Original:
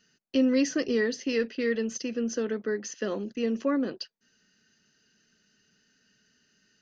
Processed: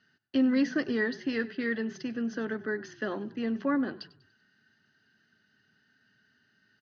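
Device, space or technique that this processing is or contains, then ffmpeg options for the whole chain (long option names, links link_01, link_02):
frequency-shifting delay pedal into a guitar cabinet: -filter_complex "[0:a]asplit=5[link_01][link_02][link_03][link_04][link_05];[link_02]adelay=97,afreqshift=-31,volume=-19dB[link_06];[link_03]adelay=194,afreqshift=-62,volume=-25.9dB[link_07];[link_04]adelay=291,afreqshift=-93,volume=-32.9dB[link_08];[link_05]adelay=388,afreqshift=-124,volume=-39.8dB[link_09];[link_01][link_06][link_07][link_08][link_09]amix=inputs=5:normalize=0,highpass=75,equalizer=frequency=110:width_type=q:width=4:gain=7,equalizer=frequency=190:width_type=q:width=4:gain=-4,equalizer=frequency=490:width_type=q:width=4:gain=-10,equalizer=frequency=800:width_type=q:width=4:gain=5,equalizer=frequency=1600:width_type=q:width=4:gain=6,equalizer=frequency=2600:width_type=q:width=4:gain=-8,lowpass=frequency=4000:width=0.5412,lowpass=frequency=4000:width=1.3066"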